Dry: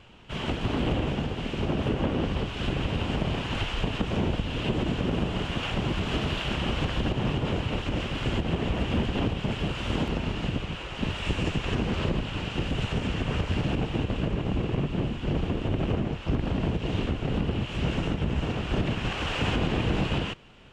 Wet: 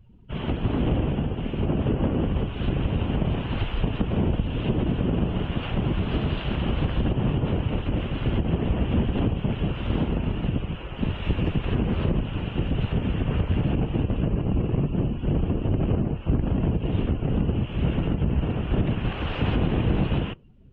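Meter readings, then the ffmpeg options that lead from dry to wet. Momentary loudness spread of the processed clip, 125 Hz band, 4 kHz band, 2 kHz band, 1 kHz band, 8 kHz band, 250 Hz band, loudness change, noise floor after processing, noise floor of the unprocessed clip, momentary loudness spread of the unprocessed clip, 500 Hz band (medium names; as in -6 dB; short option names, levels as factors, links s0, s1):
4 LU, +4.5 dB, -5.0 dB, -4.0 dB, -1.0 dB, under -25 dB, +3.5 dB, +3.0 dB, -34 dBFS, -37 dBFS, 3 LU, +1.0 dB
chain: -af "highshelf=f=3500:g=-6,afftdn=nr=20:nf=-46,lowshelf=f=430:g=7,volume=0.794"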